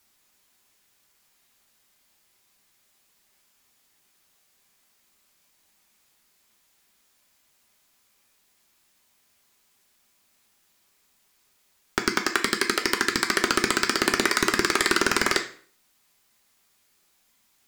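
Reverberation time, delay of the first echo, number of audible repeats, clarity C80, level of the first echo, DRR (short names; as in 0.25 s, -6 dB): 0.50 s, none, none, 15.5 dB, none, 4.0 dB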